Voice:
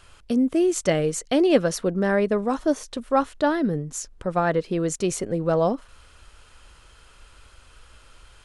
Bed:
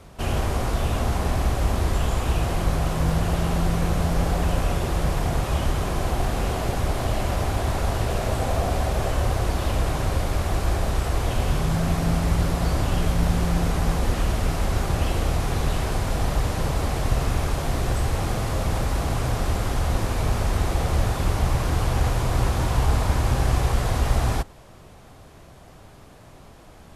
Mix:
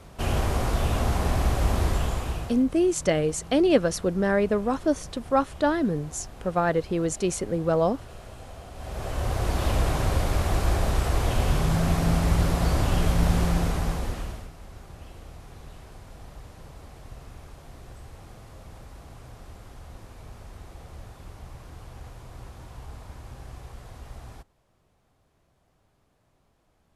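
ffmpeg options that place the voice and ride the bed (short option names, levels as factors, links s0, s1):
-filter_complex "[0:a]adelay=2200,volume=0.841[s0];[1:a]volume=7.94,afade=t=out:st=1.84:d=0.8:silence=0.11885,afade=t=in:st=8.74:d=0.93:silence=0.112202,afade=t=out:st=13.41:d=1.09:silence=0.0944061[s1];[s0][s1]amix=inputs=2:normalize=0"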